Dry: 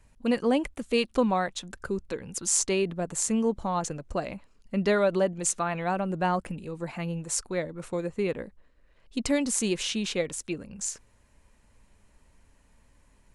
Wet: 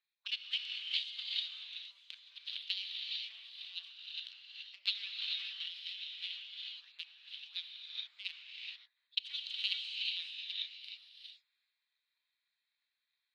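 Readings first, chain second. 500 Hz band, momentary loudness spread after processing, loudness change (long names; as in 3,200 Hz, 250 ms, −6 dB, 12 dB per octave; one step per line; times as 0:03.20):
below −40 dB, 13 LU, −11.0 dB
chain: adaptive Wiener filter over 15 samples
gate on every frequency bin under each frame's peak −25 dB weak
flat-topped band-pass 3,400 Hz, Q 2.8
reverb whose tail is shaped and stops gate 460 ms rising, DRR −3 dB
transient designer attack +9 dB, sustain +5 dB
level +6 dB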